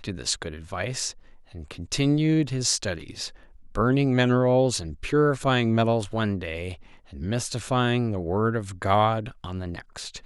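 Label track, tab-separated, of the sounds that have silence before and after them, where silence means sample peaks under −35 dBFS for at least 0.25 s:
1.550000	3.290000	sound
3.750000	6.740000	sound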